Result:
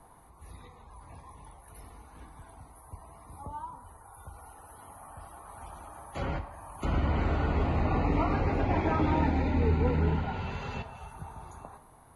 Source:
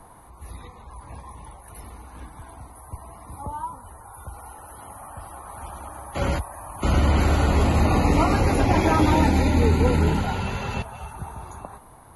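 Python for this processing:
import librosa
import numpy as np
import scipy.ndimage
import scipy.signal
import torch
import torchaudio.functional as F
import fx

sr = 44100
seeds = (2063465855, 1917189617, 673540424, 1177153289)

y = fx.vibrato(x, sr, rate_hz=1.9, depth_cents=8.5)
y = fx.env_lowpass_down(y, sr, base_hz=2700.0, full_db=-20.0)
y = fx.rev_double_slope(y, sr, seeds[0], early_s=0.62, late_s=1.6, knee_db=-18, drr_db=9.0)
y = y * librosa.db_to_amplitude(-8.5)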